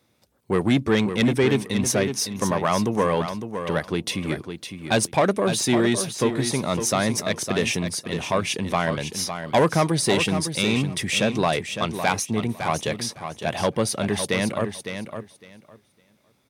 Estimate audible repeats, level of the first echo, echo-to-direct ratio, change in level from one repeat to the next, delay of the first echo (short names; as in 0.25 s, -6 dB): 2, -8.5 dB, -8.5 dB, -15.5 dB, 0.557 s